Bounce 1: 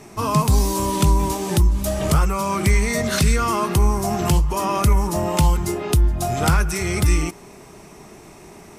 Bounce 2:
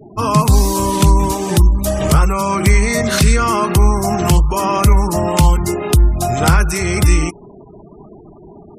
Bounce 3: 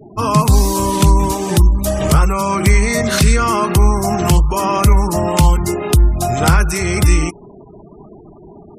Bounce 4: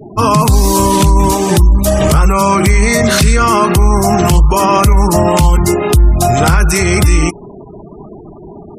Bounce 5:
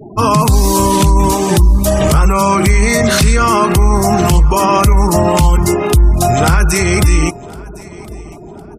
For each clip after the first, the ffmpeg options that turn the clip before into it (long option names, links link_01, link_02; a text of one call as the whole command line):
ffmpeg -i in.wav -af "afftfilt=real='re*gte(hypot(re,im),0.0158)':imag='im*gte(hypot(re,im),0.0158)':win_size=1024:overlap=0.75,volume=5.5dB" out.wav
ffmpeg -i in.wav -af anull out.wav
ffmpeg -i in.wav -af "alimiter=limit=-8.5dB:level=0:latency=1:release=21,volume=7dB" out.wav
ffmpeg -i in.wav -af "aecho=1:1:1057|2114:0.075|0.0247,volume=-1dB" out.wav